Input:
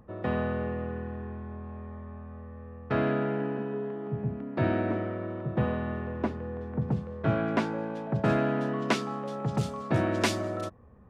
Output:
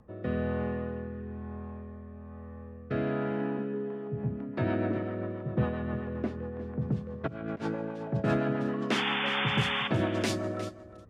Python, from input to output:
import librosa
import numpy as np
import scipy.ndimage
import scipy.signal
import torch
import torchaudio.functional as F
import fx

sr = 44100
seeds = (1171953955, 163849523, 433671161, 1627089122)

y = fx.over_compress(x, sr, threshold_db=-32.0, ratio=-0.5, at=(7.26, 7.74), fade=0.02)
y = fx.rotary_switch(y, sr, hz=1.1, then_hz=7.5, switch_at_s=3.66)
y = fx.spec_paint(y, sr, seeds[0], shape='noise', start_s=8.91, length_s=0.97, low_hz=720.0, high_hz=3600.0, level_db=-31.0)
y = y + 10.0 ** (-14.5 / 20.0) * np.pad(y, (int(357 * sr / 1000.0), 0))[:len(y)]